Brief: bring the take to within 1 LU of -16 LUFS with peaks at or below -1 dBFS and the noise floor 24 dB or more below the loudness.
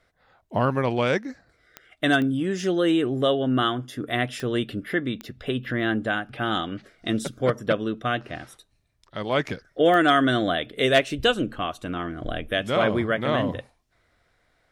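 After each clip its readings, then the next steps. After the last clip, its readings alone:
clicks found 5; loudness -24.5 LUFS; peak level -8.0 dBFS; loudness target -16.0 LUFS
-> de-click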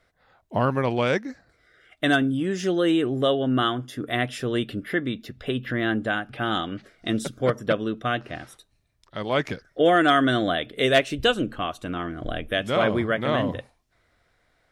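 clicks found 0; loudness -24.5 LUFS; peak level -8.0 dBFS; loudness target -16.0 LUFS
-> trim +8.5 dB; peak limiter -1 dBFS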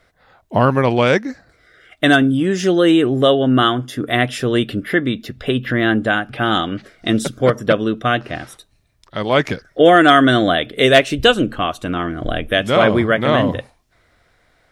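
loudness -16.0 LUFS; peak level -1.0 dBFS; noise floor -59 dBFS

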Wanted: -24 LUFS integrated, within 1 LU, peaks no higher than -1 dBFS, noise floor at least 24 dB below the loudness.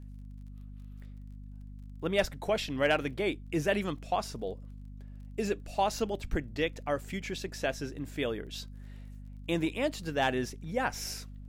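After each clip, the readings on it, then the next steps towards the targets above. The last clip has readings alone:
tick rate 26 per s; hum 50 Hz; highest harmonic 250 Hz; hum level -43 dBFS; loudness -33.0 LUFS; peak level -15.5 dBFS; loudness target -24.0 LUFS
-> de-click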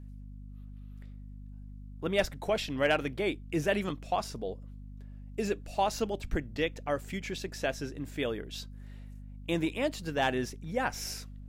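tick rate 0.087 per s; hum 50 Hz; highest harmonic 250 Hz; hum level -43 dBFS
-> hum notches 50/100/150/200/250 Hz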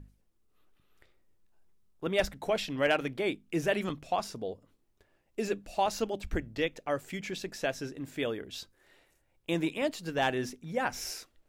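hum not found; loudness -33.0 LUFS; peak level -15.5 dBFS; loudness target -24.0 LUFS
-> trim +9 dB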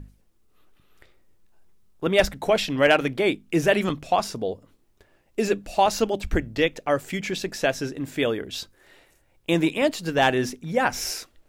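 loudness -24.0 LUFS; peak level -6.5 dBFS; noise floor -63 dBFS

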